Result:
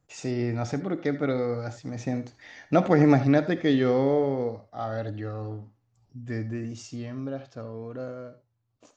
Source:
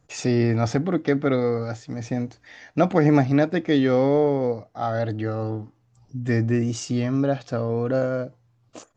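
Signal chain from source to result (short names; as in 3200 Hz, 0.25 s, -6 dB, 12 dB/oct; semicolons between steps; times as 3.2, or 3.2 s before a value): Doppler pass-by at 2.88, 9 m/s, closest 12 m; non-linear reverb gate 0.1 s rising, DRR 12 dB; gain -1.5 dB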